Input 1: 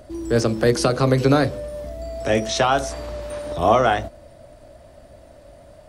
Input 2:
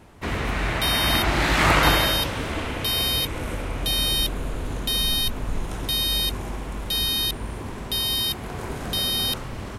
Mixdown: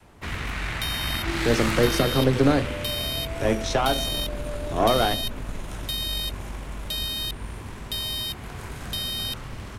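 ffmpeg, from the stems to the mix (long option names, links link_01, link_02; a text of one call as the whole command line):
ffmpeg -i stem1.wav -i stem2.wav -filter_complex "[0:a]adelay=1150,volume=-6.5dB[link_01];[1:a]acrossover=split=170|1100|3700[link_02][link_03][link_04][link_05];[link_02]acompressor=threshold=-27dB:ratio=4[link_06];[link_03]acompressor=threshold=-42dB:ratio=4[link_07];[link_04]acompressor=threshold=-28dB:ratio=4[link_08];[link_05]acompressor=threshold=-31dB:ratio=4[link_09];[link_06][link_07][link_08][link_09]amix=inputs=4:normalize=0,volume=-2dB[link_10];[link_01][link_10]amix=inputs=2:normalize=0,adynamicequalizer=threshold=0.0141:dfrequency=270:dqfactor=0.76:tfrequency=270:tqfactor=0.76:attack=5:release=100:ratio=0.375:range=2.5:mode=boostabove:tftype=bell,aeval=exprs='0.422*(cos(1*acos(clip(val(0)/0.422,-1,1)))-cos(1*PI/2))+0.0335*(cos(6*acos(clip(val(0)/0.422,-1,1)))-cos(6*PI/2))+0.00335*(cos(8*acos(clip(val(0)/0.422,-1,1)))-cos(8*PI/2))':channel_layout=same" out.wav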